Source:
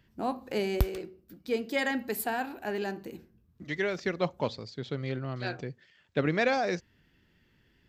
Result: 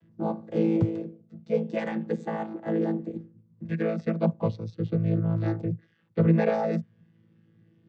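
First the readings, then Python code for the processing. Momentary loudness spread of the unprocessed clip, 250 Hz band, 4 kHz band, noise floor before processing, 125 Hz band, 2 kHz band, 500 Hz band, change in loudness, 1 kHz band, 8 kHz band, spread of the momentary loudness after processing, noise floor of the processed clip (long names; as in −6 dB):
14 LU, +8.0 dB, below −10 dB, −67 dBFS, +10.0 dB, −8.0 dB, +3.0 dB, +4.0 dB, −1.5 dB, below −15 dB, 12 LU, −64 dBFS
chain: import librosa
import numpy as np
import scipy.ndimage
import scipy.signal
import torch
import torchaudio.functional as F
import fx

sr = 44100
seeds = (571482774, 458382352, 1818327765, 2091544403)

y = fx.chord_vocoder(x, sr, chord='bare fifth', root=45)
y = fx.peak_eq(y, sr, hz=260.0, db=7.5, octaves=3.0)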